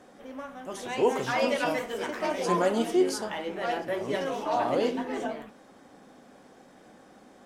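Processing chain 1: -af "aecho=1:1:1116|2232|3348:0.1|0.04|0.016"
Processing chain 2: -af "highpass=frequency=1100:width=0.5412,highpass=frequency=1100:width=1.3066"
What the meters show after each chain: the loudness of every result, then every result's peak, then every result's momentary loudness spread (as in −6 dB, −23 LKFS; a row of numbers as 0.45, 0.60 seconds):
−28.5, −36.5 LKFS; −12.0, −19.0 dBFS; 19, 15 LU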